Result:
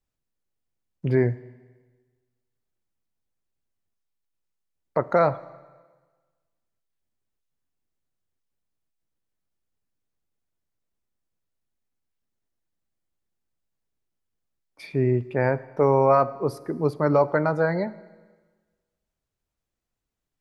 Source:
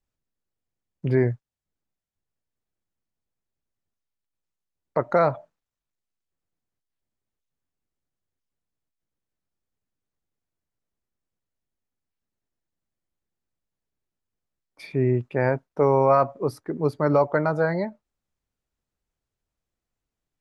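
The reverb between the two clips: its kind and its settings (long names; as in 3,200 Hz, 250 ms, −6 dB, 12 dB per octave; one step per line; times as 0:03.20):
four-comb reverb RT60 1.4 s, combs from 29 ms, DRR 17.5 dB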